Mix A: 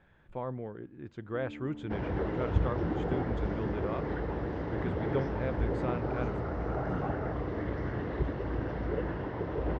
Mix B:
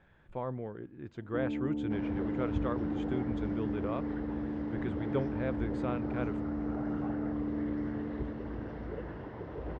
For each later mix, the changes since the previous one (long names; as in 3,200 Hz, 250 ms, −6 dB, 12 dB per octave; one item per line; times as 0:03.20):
first sound +10.0 dB
second sound −7.5 dB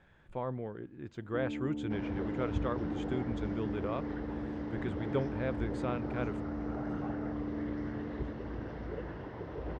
first sound −3.5 dB
master: remove low-pass filter 3,500 Hz 6 dB per octave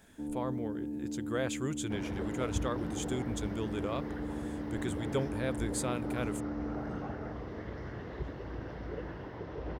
speech: remove low-pass filter 2,700 Hz 12 dB per octave
first sound: entry −1.15 s
master: add high-shelf EQ 4,800 Hz +7.5 dB